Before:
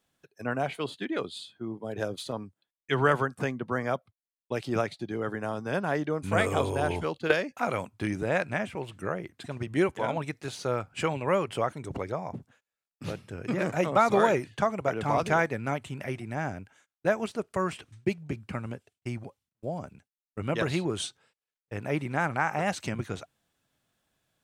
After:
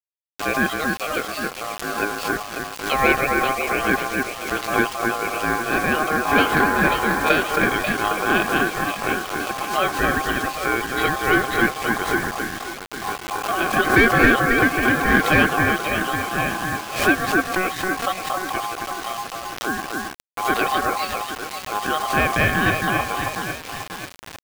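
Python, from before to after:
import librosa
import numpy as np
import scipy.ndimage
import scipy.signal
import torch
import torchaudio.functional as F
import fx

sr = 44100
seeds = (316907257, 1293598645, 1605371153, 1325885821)

p1 = scipy.signal.sosfilt(scipy.signal.butter(6, 3600.0, 'lowpass', fs=sr, output='sos'), x)
p2 = fx.hum_notches(p1, sr, base_hz=60, count=3)
p3 = p2 + 0.57 * np.pad(p2, (int(1.4 * sr / 1000.0), 0))[:len(p2)]
p4 = p3 + fx.echo_alternate(p3, sr, ms=270, hz=1200.0, feedback_pct=68, wet_db=-3.0, dry=0)
p5 = p4 * np.sin(2.0 * np.pi * 930.0 * np.arange(len(p4)) / sr)
p6 = np.clip(p5, -10.0 ** (-20.0 / 20.0), 10.0 ** (-20.0 / 20.0))
p7 = p5 + (p6 * 10.0 ** (-3.0 / 20.0))
p8 = fx.vibrato(p7, sr, rate_hz=5.1, depth_cents=11.0)
p9 = fx.quant_dither(p8, sr, seeds[0], bits=6, dither='none')
p10 = fx.pre_swell(p9, sr, db_per_s=100.0)
y = p10 * 10.0 ** (4.5 / 20.0)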